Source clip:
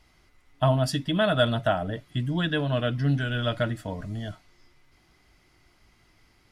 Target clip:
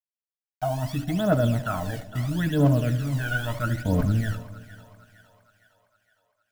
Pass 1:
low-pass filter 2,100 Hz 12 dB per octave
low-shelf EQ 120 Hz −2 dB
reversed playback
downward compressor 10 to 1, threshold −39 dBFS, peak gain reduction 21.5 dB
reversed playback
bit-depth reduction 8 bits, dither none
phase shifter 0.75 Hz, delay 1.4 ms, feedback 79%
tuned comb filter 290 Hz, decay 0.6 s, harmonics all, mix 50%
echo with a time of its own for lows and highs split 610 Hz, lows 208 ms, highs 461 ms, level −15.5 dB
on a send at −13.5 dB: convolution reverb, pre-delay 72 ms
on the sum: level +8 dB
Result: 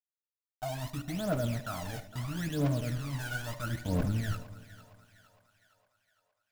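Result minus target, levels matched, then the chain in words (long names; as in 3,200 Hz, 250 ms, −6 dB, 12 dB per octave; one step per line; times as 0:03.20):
downward compressor: peak gain reduction +10 dB
low-pass filter 2,100 Hz 12 dB per octave
low-shelf EQ 120 Hz −2 dB
reversed playback
downward compressor 10 to 1, threshold −28 dBFS, peak gain reduction 11.5 dB
reversed playback
bit-depth reduction 8 bits, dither none
phase shifter 0.75 Hz, delay 1.4 ms, feedback 79%
tuned comb filter 290 Hz, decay 0.6 s, harmonics all, mix 50%
echo with a time of its own for lows and highs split 610 Hz, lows 208 ms, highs 461 ms, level −15.5 dB
on a send at −13.5 dB: convolution reverb, pre-delay 72 ms
on the sum: level +8 dB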